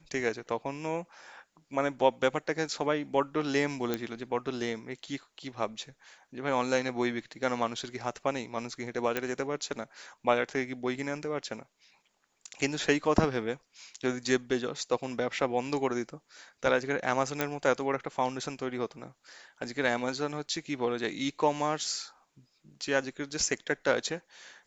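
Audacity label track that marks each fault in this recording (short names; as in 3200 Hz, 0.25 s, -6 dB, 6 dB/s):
3.940000	3.940000	pop -15 dBFS
9.170000	9.170000	pop -15 dBFS
17.410000	17.410000	pop -12 dBFS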